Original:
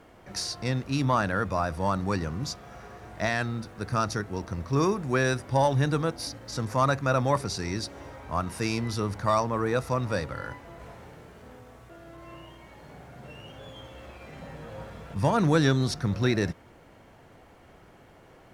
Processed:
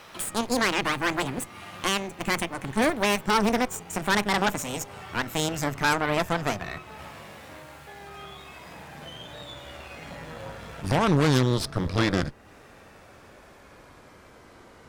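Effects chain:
gliding playback speed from 181% → 68%
harmonic generator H 6 −21 dB, 8 −12 dB, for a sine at −8.5 dBFS
one half of a high-frequency compander encoder only

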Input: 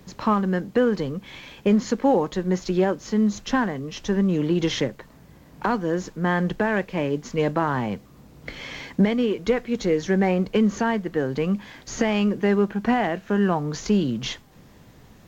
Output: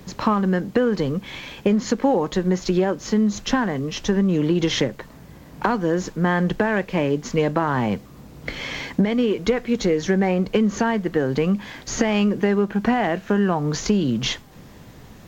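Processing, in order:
downward compressor 4 to 1, threshold −22 dBFS, peak gain reduction 8 dB
level +6 dB

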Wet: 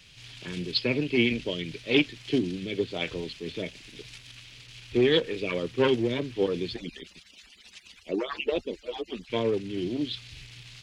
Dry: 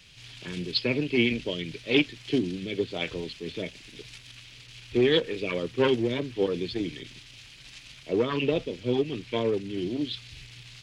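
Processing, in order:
0:06.76–0:09.30: harmonic-percussive split with one part muted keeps percussive

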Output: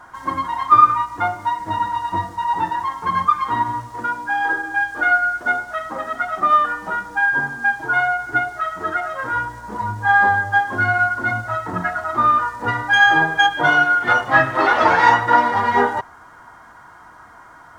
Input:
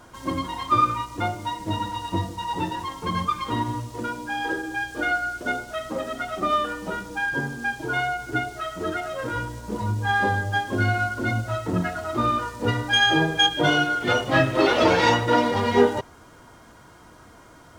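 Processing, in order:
flat-topped bell 1,200 Hz +13 dB
level −4 dB

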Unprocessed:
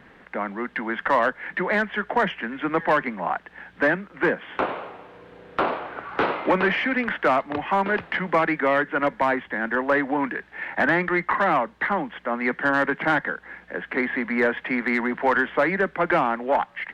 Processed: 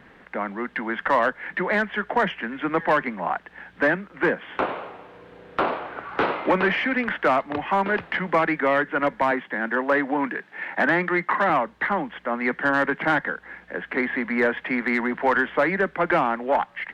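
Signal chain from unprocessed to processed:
0:09.31–0:11.50: high-pass filter 140 Hz 24 dB per octave

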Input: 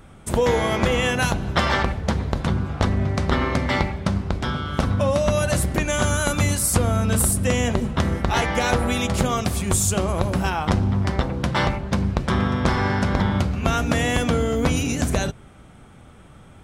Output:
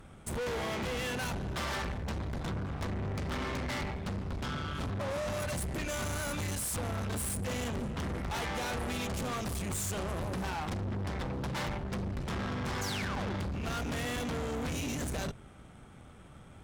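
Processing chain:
sound drawn into the spectrogram fall, 0:12.81–0:13.36, 280–7,200 Hz −27 dBFS
tube saturation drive 30 dB, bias 0.6
level −3 dB

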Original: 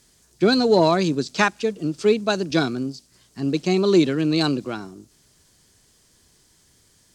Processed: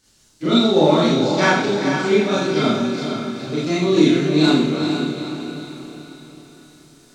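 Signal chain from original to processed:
pitch glide at a constant tempo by −2 semitones ending unshifted
feedback delay with all-pass diffusion 454 ms, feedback 47%, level −6 dB
four-comb reverb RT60 0.68 s, combs from 26 ms, DRR −9 dB
level −5.5 dB

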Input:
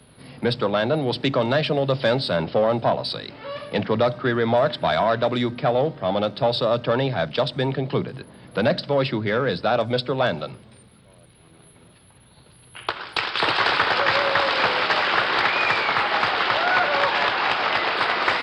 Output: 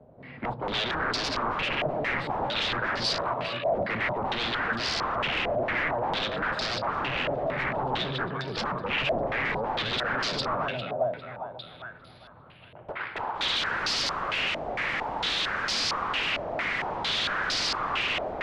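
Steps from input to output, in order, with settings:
echo with a time of its own for lows and highs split 680 Hz, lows 269 ms, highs 402 ms, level −3.5 dB
wave folding −23 dBFS
low-pass on a step sequencer 4.4 Hz 660–4,800 Hz
level −4.5 dB

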